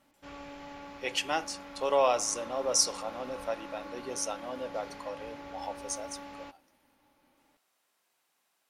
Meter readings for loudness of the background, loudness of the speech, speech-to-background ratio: −45.0 LKFS, −32.0 LKFS, 13.0 dB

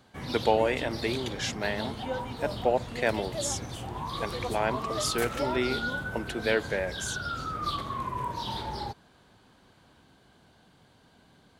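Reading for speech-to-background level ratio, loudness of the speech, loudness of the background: 3.5 dB, −31.0 LKFS, −34.5 LKFS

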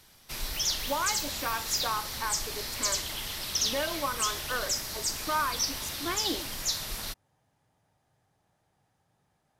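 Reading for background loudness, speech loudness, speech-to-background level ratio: −31.0 LKFS, −34.5 LKFS, −3.5 dB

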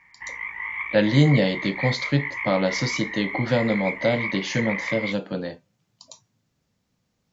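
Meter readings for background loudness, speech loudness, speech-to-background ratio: −29.5 LKFS, −24.0 LKFS, 5.5 dB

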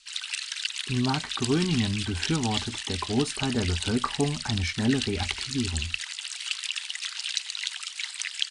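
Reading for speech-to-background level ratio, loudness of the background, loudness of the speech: 2.5 dB, −31.5 LKFS, −29.0 LKFS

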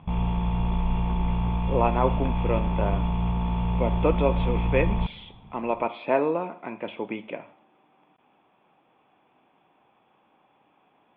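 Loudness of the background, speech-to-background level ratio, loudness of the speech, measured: −27.0 LKFS, −1.5 dB, −28.5 LKFS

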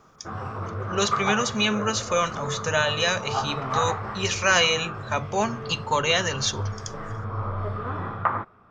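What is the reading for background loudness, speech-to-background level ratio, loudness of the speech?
−31.5 LKFS, 7.0 dB, −24.5 LKFS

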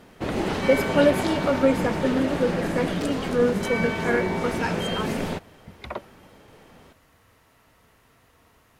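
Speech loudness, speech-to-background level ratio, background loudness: −26.0 LKFS, 1.0 dB, −27.0 LKFS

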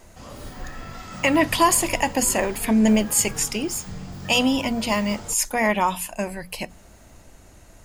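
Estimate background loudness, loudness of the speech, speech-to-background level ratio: −37.5 LKFS, −21.5 LKFS, 16.0 dB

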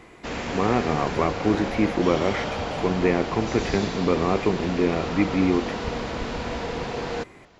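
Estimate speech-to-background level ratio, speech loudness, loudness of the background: 5.5 dB, −24.5 LKFS, −30.0 LKFS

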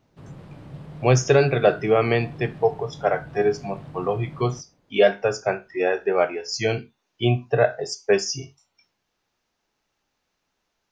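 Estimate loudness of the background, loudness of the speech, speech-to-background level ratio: −41.0 LKFS, −22.5 LKFS, 18.5 dB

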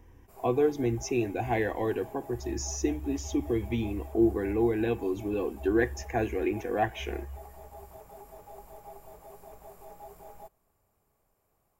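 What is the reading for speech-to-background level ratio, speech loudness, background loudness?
19.5 dB, −30.0 LKFS, −49.5 LKFS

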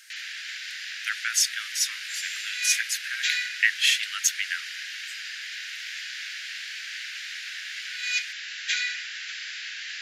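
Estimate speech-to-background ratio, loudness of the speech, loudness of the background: 5.5 dB, −26.0 LKFS, −31.5 LKFS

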